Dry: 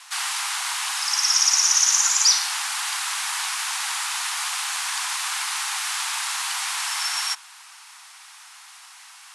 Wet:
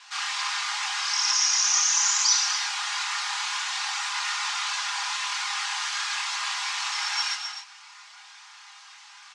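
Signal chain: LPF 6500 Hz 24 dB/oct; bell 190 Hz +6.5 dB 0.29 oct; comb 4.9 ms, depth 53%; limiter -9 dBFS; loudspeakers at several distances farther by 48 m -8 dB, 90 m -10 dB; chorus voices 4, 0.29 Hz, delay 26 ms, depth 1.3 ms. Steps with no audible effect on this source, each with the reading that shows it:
bell 190 Hz: input band starts at 600 Hz

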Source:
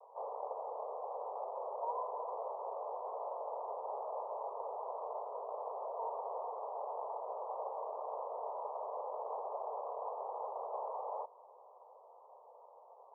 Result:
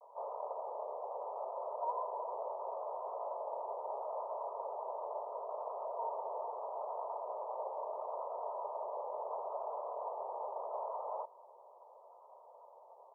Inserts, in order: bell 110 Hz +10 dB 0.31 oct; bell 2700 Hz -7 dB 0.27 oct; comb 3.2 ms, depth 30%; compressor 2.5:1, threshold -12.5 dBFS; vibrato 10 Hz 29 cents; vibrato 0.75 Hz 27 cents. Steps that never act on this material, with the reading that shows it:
bell 110 Hz: input band starts at 360 Hz; bell 2700 Hz: input band ends at 1300 Hz; compressor, threshold -12.5 dBFS: input peak -26.5 dBFS

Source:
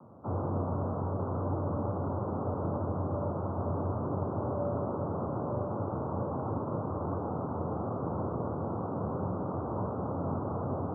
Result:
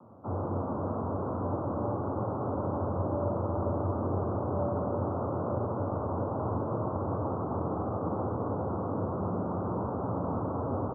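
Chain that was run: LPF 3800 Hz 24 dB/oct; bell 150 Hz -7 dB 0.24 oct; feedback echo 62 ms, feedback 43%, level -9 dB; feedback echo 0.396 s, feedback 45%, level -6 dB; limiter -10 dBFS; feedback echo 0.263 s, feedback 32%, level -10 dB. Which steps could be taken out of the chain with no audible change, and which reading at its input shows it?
LPF 3800 Hz: input band ends at 1400 Hz; limiter -10 dBFS: input peak -18.5 dBFS

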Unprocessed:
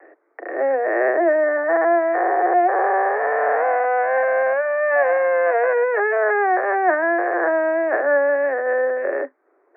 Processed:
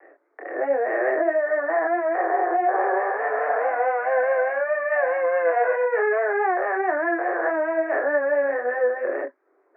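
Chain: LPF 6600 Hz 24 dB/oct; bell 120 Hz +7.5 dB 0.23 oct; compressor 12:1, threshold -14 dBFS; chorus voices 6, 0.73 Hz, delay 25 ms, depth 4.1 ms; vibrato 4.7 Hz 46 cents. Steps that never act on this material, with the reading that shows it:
LPF 6600 Hz: input band ends at 2200 Hz; bell 120 Hz: input band starts at 290 Hz

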